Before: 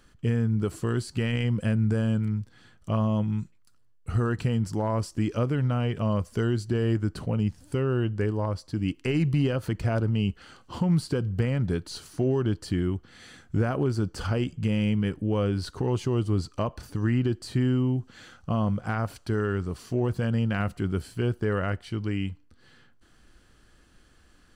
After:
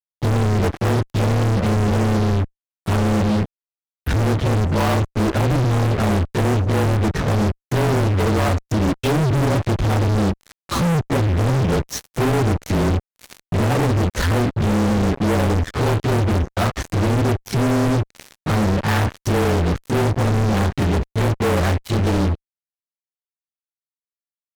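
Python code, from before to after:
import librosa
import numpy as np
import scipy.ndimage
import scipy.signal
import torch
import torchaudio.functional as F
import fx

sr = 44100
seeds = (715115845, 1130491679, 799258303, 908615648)

y = fx.partial_stretch(x, sr, pct=111)
y = fx.env_lowpass_down(y, sr, base_hz=400.0, full_db=-21.0)
y = fx.fuzz(y, sr, gain_db=46.0, gate_db=-46.0)
y = F.gain(torch.from_numpy(y), -3.0).numpy()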